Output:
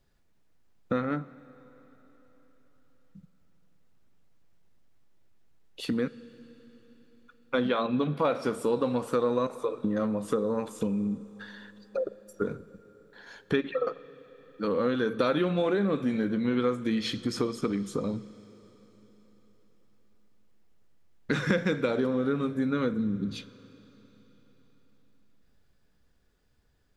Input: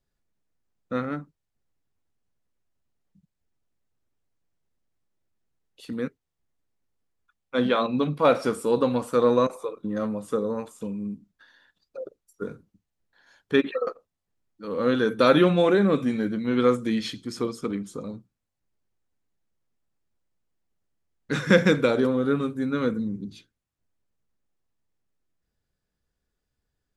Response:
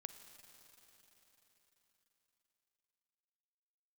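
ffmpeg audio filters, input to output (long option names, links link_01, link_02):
-filter_complex "[0:a]acompressor=threshold=-37dB:ratio=4,asplit=2[link_01][link_02];[1:a]atrim=start_sample=2205,lowpass=6300[link_03];[link_02][link_03]afir=irnorm=-1:irlink=0,volume=1dB[link_04];[link_01][link_04]amix=inputs=2:normalize=0,volume=6dB"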